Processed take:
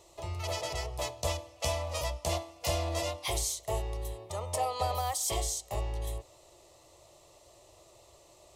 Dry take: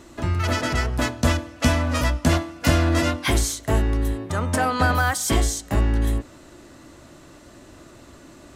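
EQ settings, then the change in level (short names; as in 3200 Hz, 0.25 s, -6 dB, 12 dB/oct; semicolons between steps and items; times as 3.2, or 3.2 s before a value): low shelf 110 Hz -10 dB; bell 190 Hz -9.5 dB 0.94 oct; fixed phaser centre 640 Hz, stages 4; -5.5 dB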